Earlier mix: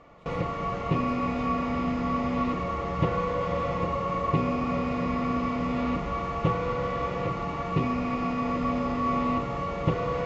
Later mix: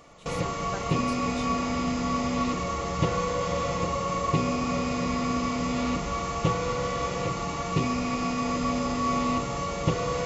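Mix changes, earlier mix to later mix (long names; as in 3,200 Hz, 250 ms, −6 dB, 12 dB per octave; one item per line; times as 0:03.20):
speech: remove first difference
master: remove low-pass filter 2,400 Hz 12 dB per octave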